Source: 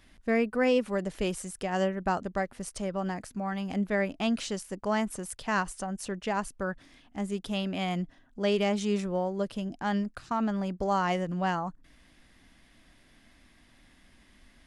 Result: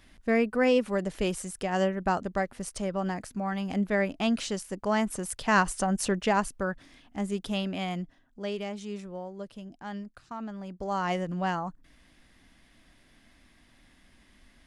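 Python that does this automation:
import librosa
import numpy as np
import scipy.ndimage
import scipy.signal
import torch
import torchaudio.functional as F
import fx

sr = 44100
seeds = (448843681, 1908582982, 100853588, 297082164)

y = fx.gain(x, sr, db=fx.line((4.92, 1.5), (6.02, 8.5), (6.7, 1.5), (7.51, 1.5), (8.73, -9.0), (10.59, -9.0), (11.12, -0.5)))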